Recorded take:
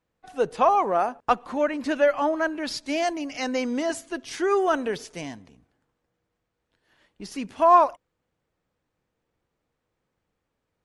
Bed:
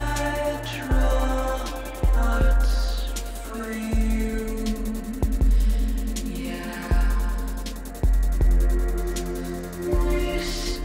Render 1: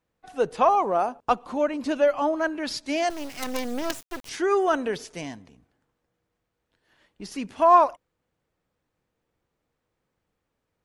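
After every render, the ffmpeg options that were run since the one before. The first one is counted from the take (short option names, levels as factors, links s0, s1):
-filter_complex "[0:a]asettb=1/sr,asplit=3[s0][s1][s2];[s0]atrim=end=0.754[s3];[s1]atrim=start=0.75:end=2.44,asetpts=PTS-STARTPTS,afade=t=in:d=0.004:c=qsin,afade=t=out:st=1.686:d=0.004:c=qsin,equalizer=f=1800:t=o:w=0.66:g=-7[s4];[s2]atrim=start=2.436[s5];[s3][s4]acrossfade=d=0.004:c1=hsin:c2=qsin[s6];[s6][s5]acrossfade=d=0.004:c1=qsin:c2=hsin,asettb=1/sr,asplit=3[s7][s8][s9];[s7]atrim=end=3.104[s10];[s8]atrim=start=3.1:end=4.29,asetpts=PTS-STARTPTS,afade=t=in:d=0.004:c=qsin,afade=t=out:st=1.186:d=0.004:c=qsin,acrusher=bits=4:dc=4:mix=0:aa=0.000001[s11];[s9]atrim=start=4.286[s12];[s10][s11]acrossfade=d=0.004:c1=hsin:c2=qsin[s13];[s13][s12]acrossfade=d=0.004:c1=qsin:c2=hsin"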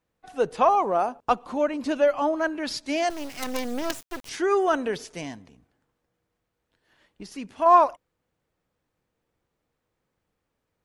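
-filter_complex "[0:a]asplit=3[s0][s1][s2];[s0]atrim=end=7.232[s3];[s1]atrim=start=7.228:end=7.662,asetpts=PTS-STARTPTS,volume=0.631[s4];[s2]atrim=start=7.658[s5];[s3][s4]acrossfade=d=0.004:c1=hsin:c2=hsin[s6];[s6][s5]acrossfade=d=0.004:c1=hsin:c2=hsin"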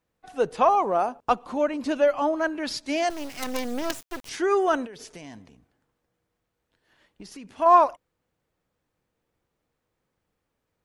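-filter_complex "[0:a]asettb=1/sr,asplit=3[s0][s1][s2];[s0]atrim=end=4.854[s3];[s1]atrim=start=4.85:end=7.5,asetpts=PTS-STARTPTS,afade=t=in:d=0.004:c=qsin,afade=t=out:st=2.646:d=0.004:c=qsin,acompressor=threshold=0.0141:ratio=20:attack=3.2:release=140:knee=1:detection=peak[s4];[s2]atrim=start=7.496[s5];[s3][s4]acrossfade=d=0.004:c1=hsin:c2=qsin[s6];[s6][s5]acrossfade=d=0.004:c1=qsin:c2=hsin"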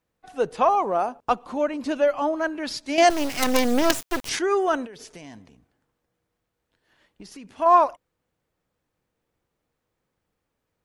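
-filter_complex "[0:a]asplit=3[s0][s1][s2];[s0]atrim=end=2.982[s3];[s1]atrim=start=2.978:end=4.392,asetpts=PTS-STARTPTS,volume=2.82[s4];[s2]atrim=start=4.388[s5];[s3][s4]acrossfade=d=0.004:c1=hsin:c2=hsin[s6];[s6][s5]acrossfade=d=0.004:c1=hsin:c2=hsin"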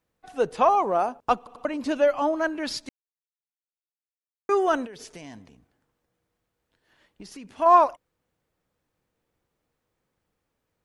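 -filter_complex "[0:a]asplit=6[s0][s1][s2][s3][s4][s5];[s0]atrim=end=1.472[s6];[s1]atrim=start=1.378:end=1.472[s7];[s2]atrim=start=1.378:end=1.472[s8];[s3]atrim=start=1.648:end=2.89,asetpts=PTS-STARTPTS,afade=t=out:st=1.238:d=0.004:c=hsin[s9];[s4]atrim=start=2.89:end=4.49,asetpts=PTS-STARTPTS,volume=0[s10];[s5]atrim=start=4.49,asetpts=PTS-STARTPTS,afade=t=in:d=0.004:c=hsin[s11];[s6][s7]acrossfade=d=0.004:c1=hsin:c2=hsin[s12];[s12][s8]acrossfade=d=0.004:c1=hsin:c2=hsin[s13];[s9][s10][s11]concat=n=3:v=0:a=1[s14];[s13][s14]acrossfade=d=0.004:c1=hsin:c2=hsin"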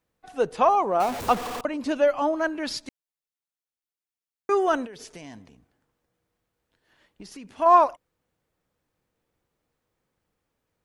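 -filter_complex "[0:a]asettb=1/sr,asplit=3[s0][s1][s2];[s0]atrim=end=1.004[s3];[s1]atrim=start=1:end=1.61,asetpts=PTS-STARTPTS,afade=t=in:d=0.004:c=qsin,afade=t=out:st=0.606:d=0.004:c=qsin,aeval=exprs='val(0)+0.5*0.0422*sgn(val(0))':c=same[s4];[s2]atrim=start=1.606[s5];[s3][s4]acrossfade=d=0.004:c1=hsin:c2=qsin[s6];[s6][s5]acrossfade=d=0.004:c1=qsin:c2=hsin"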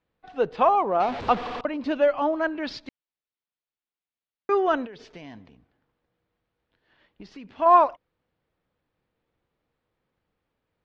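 -af "lowpass=f=4200:w=0.5412,lowpass=f=4200:w=1.3066"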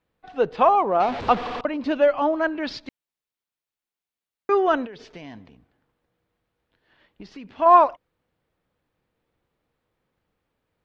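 -af "volume=1.33"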